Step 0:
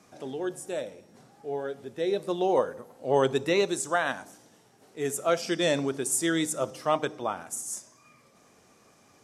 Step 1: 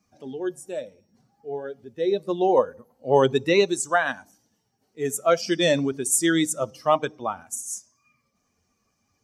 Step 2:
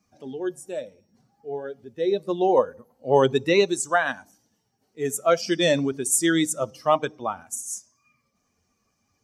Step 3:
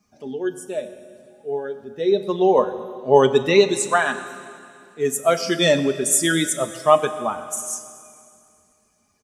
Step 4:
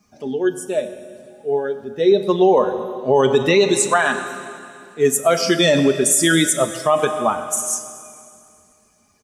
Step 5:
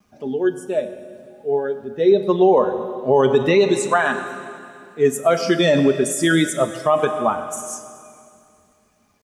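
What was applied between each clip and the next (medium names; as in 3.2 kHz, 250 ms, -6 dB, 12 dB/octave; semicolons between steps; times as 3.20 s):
expander on every frequency bin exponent 1.5; trim +7 dB
no audible change
comb 4.8 ms, depth 38%; on a send at -10 dB: reverberation RT60 2.4 s, pre-delay 6 ms; on the sum: trim +3 dB
peak limiter -11.5 dBFS, peak gain reduction 10 dB; trim +6 dB
bit crusher 10-bit; treble shelf 3.7 kHz -11 dB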